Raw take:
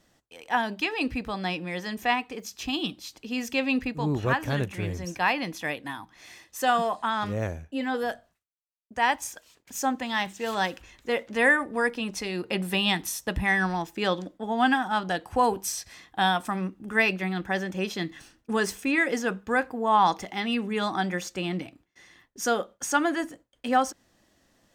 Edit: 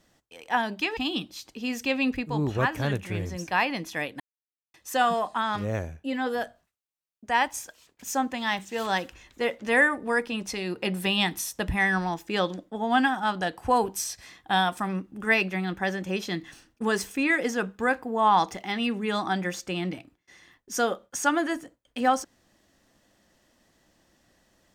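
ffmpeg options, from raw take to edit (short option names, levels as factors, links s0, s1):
-filter_complex "[0:a]asplit=4[s0][s1][s2][s3];[s0]atrim=end=0.972[s4];[s1]atrim=start=2.648:end=5.88,asetpts=PTS-STARTPTS,afade=t=out:st=3.228:d=0.004:c=hsin[s5];[s2]atrim=start=5.88:end=6.42,asetpts=PTS-STARTPTS,volume=0[s6];[s3]atrim=start=6.42,asetpts=PTS-STARTPTS,afade=t=in:d=0.004:c=hsin[s7];[s5][s6][s7]concat=n=3:v=0:a=1[s8];[s4][s8]acrossfade=d=0.004:c1=hsin:c2=hsin"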